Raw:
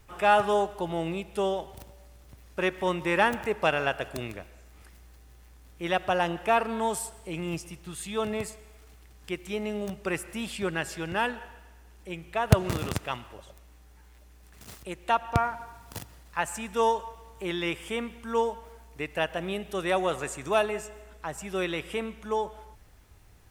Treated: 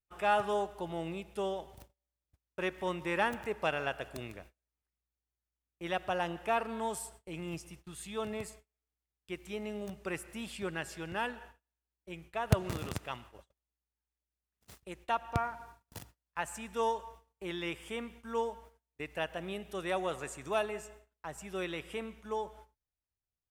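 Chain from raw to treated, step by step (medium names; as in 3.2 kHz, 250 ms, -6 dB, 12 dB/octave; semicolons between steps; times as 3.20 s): gate -45 dBFS, range -33 dB; trim -7.5 dB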